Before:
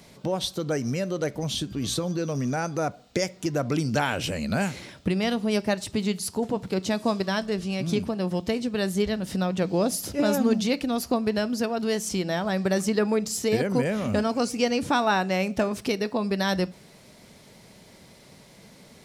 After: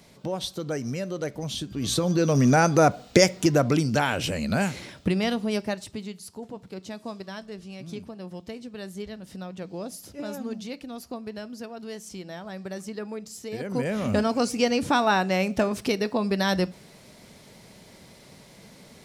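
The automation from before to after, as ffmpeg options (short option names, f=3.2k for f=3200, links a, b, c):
-af "volume=21.5dB,afade=t=in:st=1.7:d=0.83:silence=0.251189,afade=t=out:st=3.24:d=0.64:silence=0.398107,afade=t=out:st=5.11:d=1:silence=0.237137,afade=t=in:st=13.53:d=0.55:silence=0.237137"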